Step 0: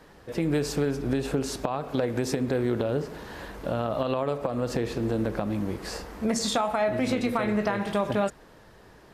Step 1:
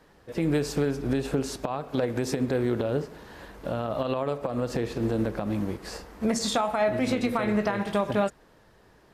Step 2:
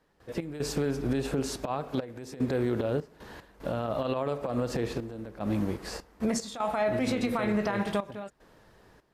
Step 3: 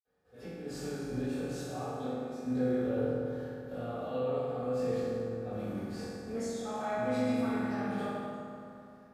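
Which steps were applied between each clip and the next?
in parallel at -0.5 dB: peak limiter -19.5 dBFS, peak gain reduction 10 dB; on the sum: upward expansion 1.5:1, over -34 dBFS; trim -3 dB
peak limiter -19 dBFS, peak gain reduction 7 dB; trance gate ".x.xxxxxxx..xxx" 75 bpm -12 dB
reverberation RT60 2.7 s, pre-delay 47 ms

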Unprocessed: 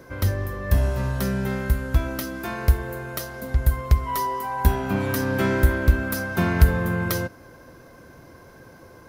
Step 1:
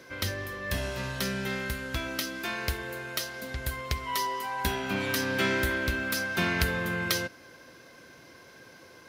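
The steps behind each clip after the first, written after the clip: frequency weighting D; trim -5.5 dB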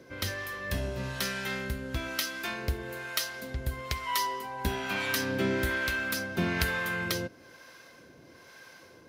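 harmonic tremolo 1.1 Hz, depth 70%, crossover 630 Hz; trim +2 dB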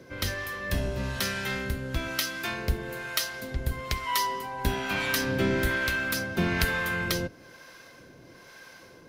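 octave divider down 1 oct, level -5 dB; trim +2.5 dB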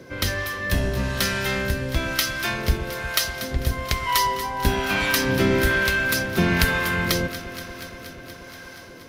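echo whose repeats swap between lows and highs 119 ms, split 890 Hz, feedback 88%, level -12.5 dB; trim +6 dB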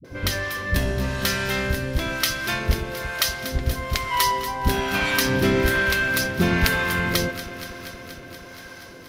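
phase dispersion highs, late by 46 ms, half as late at 310 Hz

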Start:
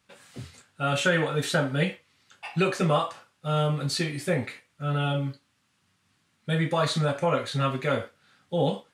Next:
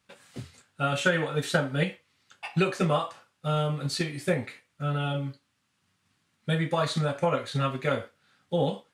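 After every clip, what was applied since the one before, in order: transient shaper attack +5 dB, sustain -1 dB; trim -3 dB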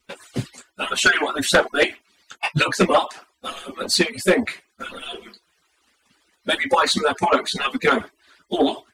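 harmonic-percussive separation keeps percussive; sine folder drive 9 dB, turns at -10 dBFS; trim +1.5 dB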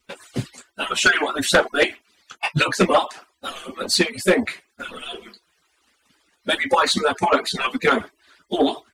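warped record 45 rpm, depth 100 cents

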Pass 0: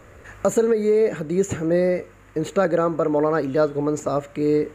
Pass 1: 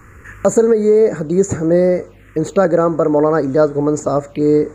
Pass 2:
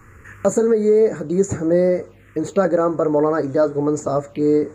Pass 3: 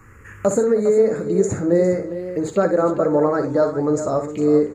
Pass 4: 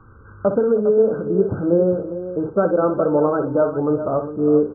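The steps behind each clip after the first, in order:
touch-sensitive phaser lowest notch 560 Hz, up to 3 kHz, full sweep at -21 dBFS; trim +7 dB
flange 0.97 Hz, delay 8.7 ms, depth 1.1 ms, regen -53%
multi-tap echo 60/315/406 ms -9/-19.5/-11.5 dB; trim -1 dB
brick-wall FIR low-pass 1.6 kHz

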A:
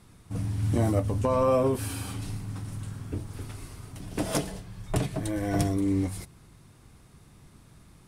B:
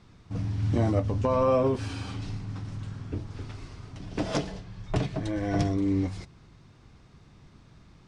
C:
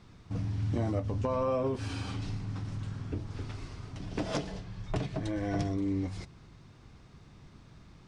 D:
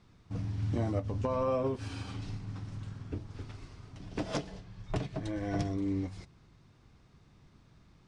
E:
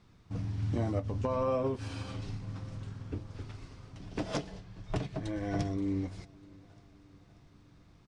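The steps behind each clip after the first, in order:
low-pass 6 kHz 24 dB/octave
compression 2:1, threshold -32 dBFS, peak gain reduction 7.5 dB
upward expansion 1.5:1, over -41 dBFS
feedback delay 587 ms, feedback 55%, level -23.5 dB

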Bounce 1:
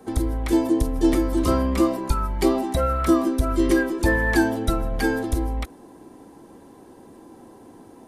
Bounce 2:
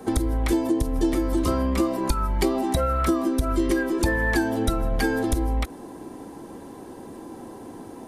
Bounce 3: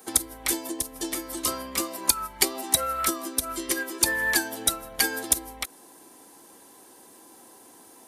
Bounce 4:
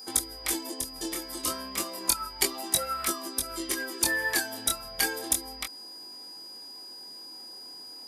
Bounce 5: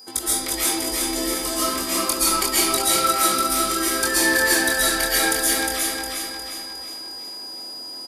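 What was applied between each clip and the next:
compression, threshold -26 dBFS, peak gain reduction 12.5 dB; trim +6.5 dB
tilt EQ +4.5 dB/octave; upward expansion 1.5:1, over -35 dBFS
chorus 0.32 Hz, delay 20 ms, depth 6 ms; whistle 4.9 kHz -42 dBFS
on a send: feedback delay 358 ms, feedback 49%, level -3.5 dB; on the sum: algorithmic reverb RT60 0.97 s, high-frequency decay 0.75×, pre-delay 95 ms, DRR -8.5 dB

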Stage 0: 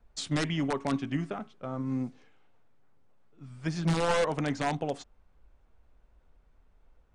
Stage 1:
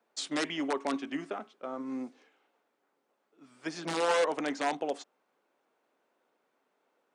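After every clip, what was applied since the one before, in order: high-pass 280 Hz 24 dB/octave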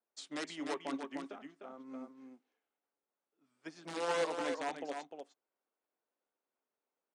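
delay 302 ms -4 dB; upward expansion 1.5:1, over -49 dBFS; trim -6 dB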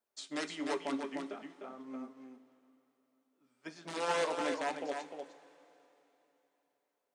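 two-slope reverb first 0.2 s, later 3.4 s, from -19 dB, DRR 7 dB; trim +2 dB

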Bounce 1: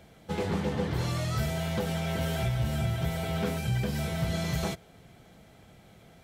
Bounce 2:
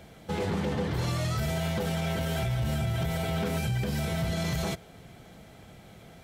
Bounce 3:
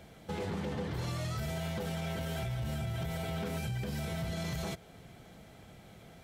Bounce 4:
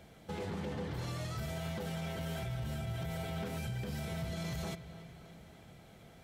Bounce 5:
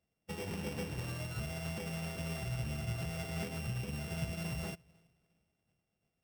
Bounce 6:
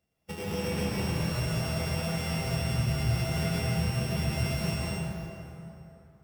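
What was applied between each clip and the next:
peak limiter -26 dBFS, peak gain reduction 7.5 dB; trim +4.5 dB
compression 1.5:1, threshold -35 dBFS, peak gain reduction 4 dB; trim -3.5 dB
feedback echo behind a low-pass 288 ms, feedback 59%, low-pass 4 kHz, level -14 dB; trim -3 dB
sorted samples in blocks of 16 samples; upward expansion 2.5:1, over -57 dBFS; trim +3.5 dB
plate-style reverb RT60 3.1 s, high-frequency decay 0.6×, pre-delay 115 ms, DRR -5.5 dB; trim +3.5 dB

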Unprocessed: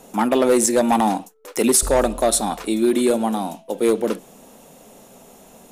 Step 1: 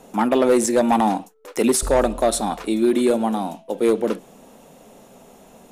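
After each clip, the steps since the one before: treble shelf 5.2 kHz -7.5 dB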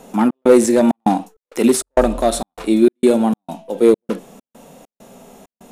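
harmonic-percussive split harmonic +8 dB; trance gate "xx.xxx.xx." 99 bpm -60 dB; trim -1 dB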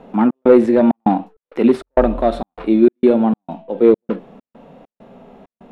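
distance through air 400 m; trim +1.5 dB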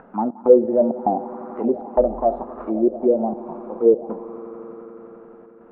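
echo with a slow build-up 87 ms, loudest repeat 5, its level -18 dB; upward compressor, threshold -33 dBFS; touch-sensitive low-pass 510–1500 Hz down, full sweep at -7 dBFS; trim -11.5 dB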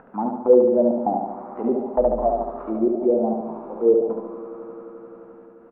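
feedback delay 72 ms, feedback 57%, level -4 dB; trim -3 dB

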